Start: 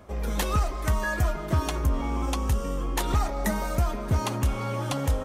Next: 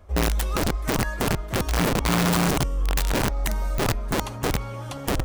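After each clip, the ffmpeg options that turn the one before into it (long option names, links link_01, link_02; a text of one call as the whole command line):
ffmpeg -i in.wav -af "lowshelf=frequency=100:width_type=q:width=1.5:gain=12,bandreject=frequency=50:width_type=h:width=6,bandreject=frequency=100:width_type=h:width=6,bandreject=frequency=150:width_type=h:width=6,bandreject=frequency=200:width_type=h:width=6,bandreject=frequency=250:width_type=h:width=6,bandreject=frequency=300:width_type=h:width=6,bandreject=frequency=350:width_type=h:width=6,aeval=exprs='(mod(4.22*val(0)+1,2)-1)/4.22':channel_layout=same,volume=-5dB" out.wav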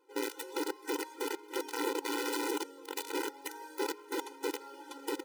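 ffmpeg -i in.wav -filter_complex "[0:a]asplit=2[link_01][link_02];[link_02]acrusher=samples=22:mix=1:aa=0.000001:lfo=1:lforange=22:lforate=1,volume=-7dB[link_03];[link_01][link_03]amix=inputs=2:normalize=0,afftfilt=real='re*eq(mod(floor(b*sr/1024/260),2),1)':imag='im*eq(mod(floor(b*sr/1024/260),2),1)':win_size=1024:overlap=0.75,volume=-8.5dB" out.wav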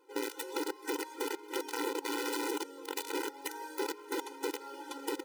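ffmpeg -i in.wav -af "acompressor=threshold=-39dB:ratio=2,volume=4dB" out.wav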